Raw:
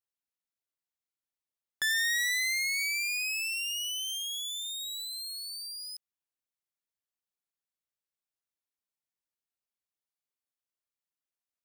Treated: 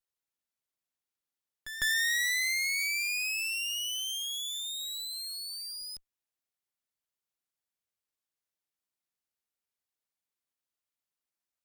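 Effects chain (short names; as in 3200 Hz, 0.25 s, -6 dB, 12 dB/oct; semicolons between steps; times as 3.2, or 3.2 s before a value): half-wave gain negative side -12 dB; reverse echo 0.153 s -12.5 dB; added harmonics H 4 -31 dB, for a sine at -21 dBFS; gain +4 dB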